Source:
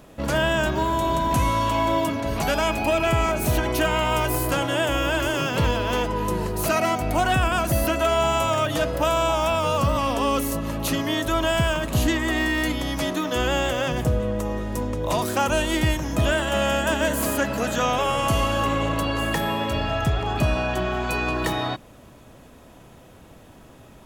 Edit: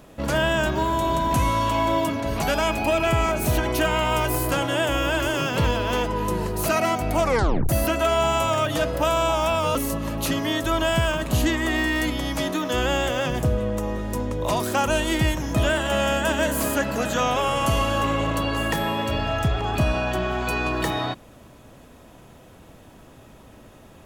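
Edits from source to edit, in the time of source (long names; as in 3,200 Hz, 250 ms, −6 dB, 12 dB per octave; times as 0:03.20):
0:07.17: tape stop 0.52 s
0:09.75–0:10.37: remove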